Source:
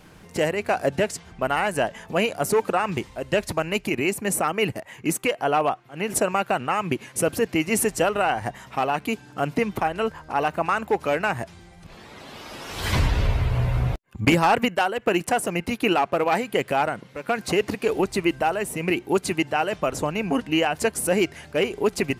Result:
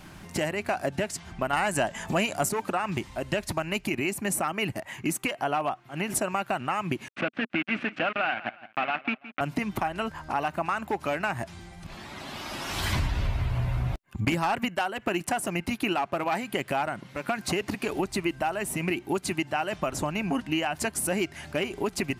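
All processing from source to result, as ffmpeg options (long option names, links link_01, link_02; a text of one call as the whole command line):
ffmpeg -i in.wav -filter_complex "[0:a]asettb=1/sr,asplit=3[link_01][link_02][link_03];[link_01]atrim=end=1.534[link_04];[link_02]atrim=start=1.53:end=2.49,asetpts=PTS-STARTPTS,afade=type=in:duration=0.004:curve=qsin,afade=type=out:start_time=0.956:duration=0.004:curve=qsin,equalizer=frequency=7500:width_type=o:width=0.37:gain=8,acontrast=64[link_05];[link_03]atrim=start=2.486[link_06];[link_04][link_05]acrossfade=duration=0.004:curve1=hsin:curve2=qsin[link_07];[link_07][link_06]acrossfade=duration=0.004:curve1=qsin:curve2=hsin,asettb=1/sr,asplit=3[link_08][link_09][link_10];[link_08]atrim=end=7.084[link_11];[link_09]atrim=start=7.08:end=9.41,asetpts=PTS-STARTPTS,afade=type=in:duration=0.004:curve=qsin,afade=type=out:start_time=2.326:duration=0.004:curve=qsin,acrusher=bits=3:mix=0:aa=0.5,highpass=210,equalizer=frequency=240:width_type=q:width=4:gain=3,equalizer=frequency=390:width_type=q:width=4:gain=-7,equalizer=frequency=950:width_type=q:width=4:gain=-7,equalizer=frequency=1500:width_type=q:width=4:gain=5,equalizer=frequency=2500:width_type=q:width=4:gain=7,lowpass=frequency=2900:width=0.5412,lowpass=frequency=2900:width=1.3066,aecho=1:1:166|332:0.1|0.026,atrim=end_sample=102753[link_12];[link_10]atrim=start=9.406[link_13];[link_11][link_12]acrossfade=duration=0.004:curve1=hsin:curve2=qsin[link_14];[link_14][link_13]acrossfade=duration=0.004:curve1=qsin:curve2=hsin,equalizer=frequency=470:width_type=o:width=0.22:gain=-15,acompressor=threshold=-31dB:ratio=2.5,volume=3dB" out.wav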